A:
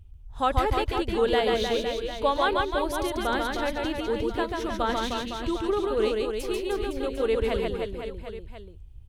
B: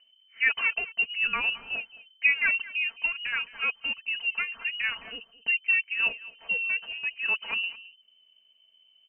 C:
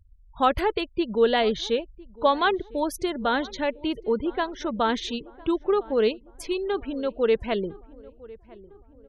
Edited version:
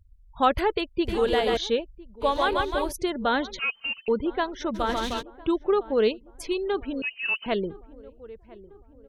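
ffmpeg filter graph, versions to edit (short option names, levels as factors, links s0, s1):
-filter_complex "[0:a]asplit=3[s0][s1][s2];[1:a]asplit=2[s3][s4];[2:a]asplit=6[s5][s6][s7][s8][s9][s10];[s5]atrim=end=1.052[s11];[s0]atrim=start=1.048:end=1.572[s12];[s6]atrim=start=1.568:end=2.24[s13];[s1]atrim=start=2.2:end=2.93[s14];[s7]atrim=start=2.89:end=3.592[s15];[s3]atrim=start=3.588:end=4.082[s16];[s8]atrim=start=4.078:end=4.78[s17];[s2]atrim=start=4.74:end=5.23[s18];[s9]atrim=start=5.19:end=7.022[s19];[s4]atrim=start=7.018:end=7.462[s20];[s10]atrim=start=7.458[s21];[s11][s12]acrossfade=d=0.004:c1=hsin:c2=hsin[s22];[s22][s13]acrossfade=d=0.004:c1=hsin:c2=hsin[s23];[s23][s14]acrossfade=d=0.04:c1=tri:c2=tri[s24];[s24][s15]acrossfade=d=0.04:c1=tri:c2=tri[s25];[s25][s16]acrossfade=d=0.004:c1=hsin:c2=hsin[s26];[s26][s17]acrossfade=d=0.004:c1=hsin:c2=hsin[s27];[s27][s18]acrossfade=d=0.04:c1=tri:c2=tri[s28];[s28][s19]acrossfade=d=0.04:c1=tri:c2=tri[s29];[s29][s20]acrossfade=d=0.004:c1=hsin:c2=hsin[s30];[s30][s21]acrossfade=d=0.004:c1=hsin:c2=hsin"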